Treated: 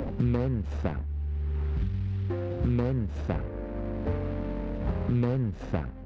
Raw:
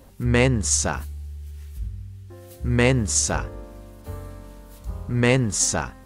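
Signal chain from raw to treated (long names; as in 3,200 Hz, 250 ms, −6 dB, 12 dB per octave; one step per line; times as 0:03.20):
running median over 41 samples
Gaussian smoothing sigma 2.2 samples
multiband upward and downward compressor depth 100%
level −3 dB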